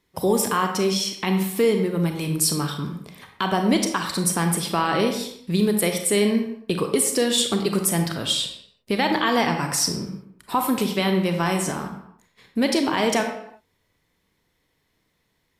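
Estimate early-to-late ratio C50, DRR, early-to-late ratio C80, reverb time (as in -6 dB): 6.0 dB, 4.5 dB, 8.5 dB, not exponential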